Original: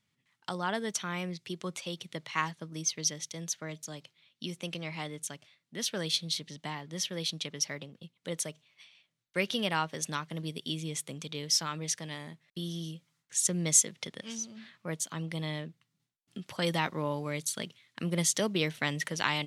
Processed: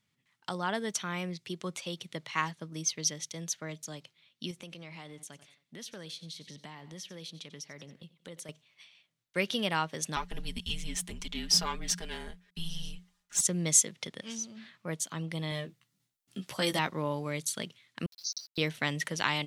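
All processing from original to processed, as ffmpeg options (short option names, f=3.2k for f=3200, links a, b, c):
-filter_complex "[0:a]asettb=1/sr,asplit=3[a][b][c];[a]atrim=end=4.514[d];[b]atrim=start=4.51:end=8.49,asetpts=PTS-STARTPTS,afade=t=in:d=0.004:c=qsin,afade=t=out:st=3.976:d=0.004:c=qsin,aecho=1:1:90|180|270:0.0891|0.0392|0.0173,atrim=end_sample=175518,acompressor=threshold=-44dB:ratio=3:attack=3.2:release=140:knee=1:detection=peak[e];[c]atrim=start=8.486[f];[d][e]acrossfade=d=0.004:c1=hsin:c2=qsin[g];[g][f]acrossfade=d=0.004:c1=qsin:c2=hsin,asettb=1/sr,asplit=3[h][i][j];[h]atrim=end=10.164[k];[i]atrim=start=10.16:end=13.41,asetpts=PTS-STARTPTS,afade=t=in:d=0.004:c=qsin,afade=t=out:st=3.246:d=0.004:c=qsin,aeval=exprs='if(lt(val(0),0),0.708*val(0),val(0))':c=same,aecho=1:1:5:0.96,atrim=end_sample=143325,afreqshift=-180[l];[j]atrim=start=13.406[m];[k][l]acrossfade=d=0.004:c1=hsin:c2=qsin[n];[n][m]acrossfade=d=0.004:c1=qsin:c2=hsin,asettb=1/sr,asplit=3[o][p][q];[o]atrim=end=15.504[r];[p]atrim=start=15.5:end=16.79,asetpts=PTS-STARTPTS,afade=t=in:d=0.004:c=qsin,afade=t=out:st=1.286:d=0.004:c=qsin,highshelf=f=6k:g=7.5,asplit=2[s][t];[t]adelay=15,volume=-5dB[u];[s][u]amix=inputs=2:normalize=0,atrim=end_sample=56889[v];[q]atrim=start=16.786[w];[r][v]acrossfade=d=0.004:c1=hsin:c2=qsin[x];[x][w]acrossfade=d=0.004:c1=qsin:c2=hsin,asettb=1/sr,asplit=3[y][z][aa];[y]atrim=end=18.064[ab];[z]atrim=start=18.06:end=18.58,asetpts=PTS-STARTPTS,afade=t=in:d=0.004:c=qsin,afade=t=out:st=0.516:d=0.004:c=qsin,asuperpass=centerf=4900:order=12:qfactor=2.3,aeval=exprs='val(0)*gte(abs(val(0)),0.00211)':c=same[ac];[aa]atrim=start=18.576[ad];[ab][ac]acrossfade=d=0.004:c1=hsin:c2=qsin[ae];[ae][ad]acrossfade=d=0.004:c1=qsin:c2=hsin"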